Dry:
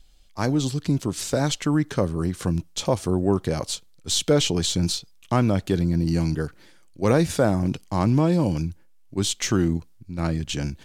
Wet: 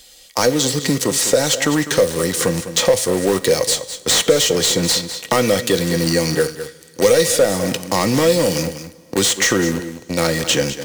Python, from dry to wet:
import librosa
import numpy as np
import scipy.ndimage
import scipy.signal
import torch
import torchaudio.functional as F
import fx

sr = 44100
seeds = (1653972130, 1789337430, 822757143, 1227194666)

p1 = fx.highpass(x, sr, hz=360.0, slope=6)
p2 = fx.high_shelf(p1, sr, hz=3400.0, db=11.0)
p3 = fx.leveller(p2, sr, passes=3)
p4 = (np.mod(10.0 ** (17.0 / 20.0) * p3 + 1.0, 2.0) - 1.0) / 10.0 ** (17.0 / 20.0)
p5 = p3 + (p4 * 10.0 ** (-8.5 / 20.0))
p6 = fx.small_body(p5, sr, hz=(500.0, 1900.0), ring_ms=85, db=16)
p7 = p6 + fx.echo_single(p6, sr, ms=201, db=-14.5, dry=0)
p8 = fx.rev_double_slope(p7, sr, seeds[0], early_s=0.6, late_s=1.8, knee_db=-18, drr_db=14.0)
p9 = fx.band_squash(p8, sr, depth_pct=70)
y = p9 * 10.0 ** (-4.5 / 20.0)